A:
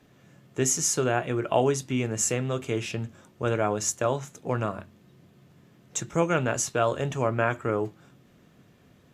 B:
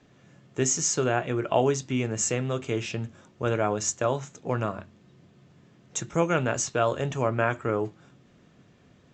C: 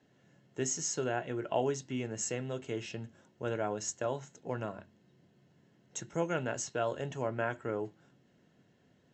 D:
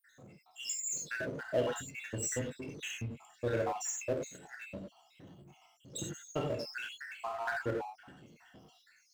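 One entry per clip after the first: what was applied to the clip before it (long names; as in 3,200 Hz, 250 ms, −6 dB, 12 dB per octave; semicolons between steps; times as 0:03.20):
Butterworth low-pass 7,700 Hz 72 dB per octave
notch comb filter 1,200 Hz; level −8 dB
time-frequency cells dropped at random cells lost 83%; reverb whose tail is shaped and stops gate 120 ms flat, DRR 1 dB; power curve on the samples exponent 0.7; level −1 dB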